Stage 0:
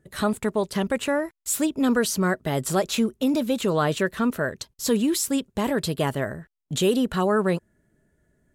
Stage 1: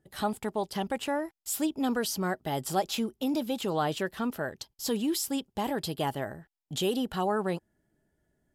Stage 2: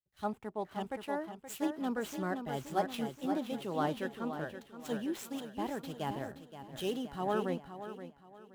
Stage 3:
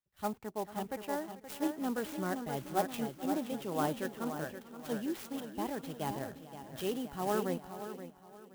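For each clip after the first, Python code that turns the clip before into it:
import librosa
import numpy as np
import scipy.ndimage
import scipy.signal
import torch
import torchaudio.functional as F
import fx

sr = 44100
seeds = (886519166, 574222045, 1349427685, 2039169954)

y1 = fx.graphic_eq_31(x, sr, hz=(315, 800, 3150, 5000, 12500), db=(4, 11, 6, 7, 7))
y1 = y1 * 10.0 ** (-9.0 / 20.0)
y2 = scipy.ndimage.median_filter(y1, 9, mode='constant')
y2 = fx.echo_feedback(y2, sr, ms=524, feedback_pct=54, wet_db=-6)
y2 = fx.band_widen(y2, sr, depth_pct=100)
y2 = y2 * 10.0 ** (-6.5 / 20.0)
y3 = y2 + 10.0 ** (-17.5 / 20.0) * np.pad(y2, (int(439 * sr / 1000.0), 0))[:len(y2)]
y3 = fx.clock_jitter(y3, sr, seeds[0], jitter_ms=0.043)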